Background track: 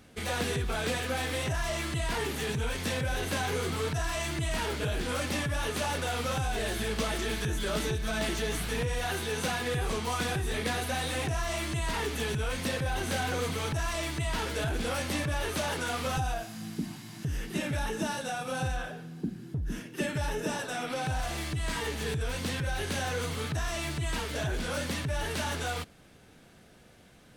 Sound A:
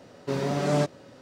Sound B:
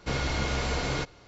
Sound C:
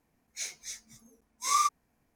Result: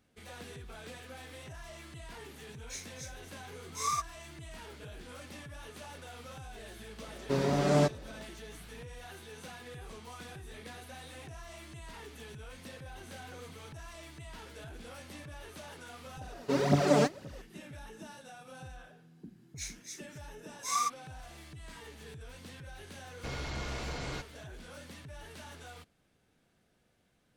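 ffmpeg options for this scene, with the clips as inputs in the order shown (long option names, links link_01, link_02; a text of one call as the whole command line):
ffmpeg -i bed.wav -i cue0.wav -i cue1.wav -i cue2.wav -filter_complex "[3:a]asplit=2[link_01][link_02];[1:a]asplit=2[link_03][link_04];[0:a]volume=-16dB[link_05];[link_04]aphaser=in_gain=1:out_gain=1:delay=5:decay=0.7:speed=1.9:type=triangular[link_06];[link_02]highpass=750[link_07];[2:a]asoftclip=type=tanh:threshold=-23dB[link_08];[link_01]atrim=end=2.15,asetpts=PTS-STARTPTS,volume=-6.5dB,afade=type=in:duration=0.004:curve=hsin,afade=type=out:start_time=2.146:duration=0.004:curve=hsin,adelay=2330[link_09];[link_03]atrim=end=1.21,asetpts=PTS-STARTPTS,volume=-1.5dB,afade=type=in:duration=0.004:curve=hsin,afade=type=out:start_time=1.206:duration=0.004:curve=hsin,adelay=7020[link_10];[link_06]atrim=end=1.21,asetpts=PTS-STARTPTS,volume=-2.5dB,afade=type=in:duration=0.004:curve=hsin,afade=type=out:start_time=1.206:duration=0.004:curve=hsin,adelay=16210[link_11];[link_07]atrim=end=2.15,asetpts=PTS-STARTPTS,volume=-4.5dB,afade=type=in:duration=0.004:curve=hsin,afade=type=out:start_time=2.146:duration=0.004:curve=hsin,adelay=19210[link_12];[link_08]atrim=end=1.27,asetpts=PTS-STARTPTS,volume=-8dB,afade=type=in:duration=0.004:curve=hsin,afade=type=out:start_time=1.266:duration=0.004:curve=hsin,adelay=23170[link_13];[link_05][link_09][link_10][link_11][link_12][link_13]amix=inputs=6:normalize=0" out.wav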